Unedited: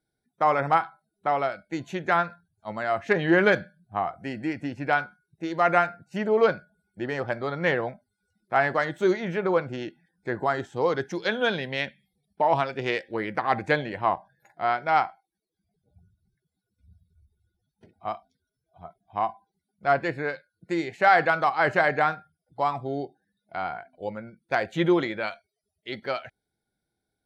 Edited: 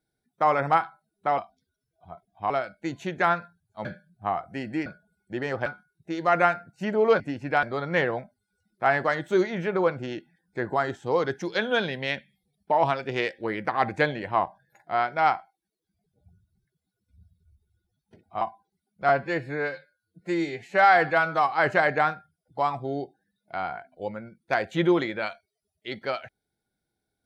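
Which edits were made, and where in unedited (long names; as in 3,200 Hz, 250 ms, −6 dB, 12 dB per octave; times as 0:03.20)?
0:02.73–0:03.55: remove
0:04.56–0:04.99: swap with 0:06.53–0:07.33
0:18.11–0:19.23: move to 0:01.38
0:19.91–0:21.53: time-stretch 1.5×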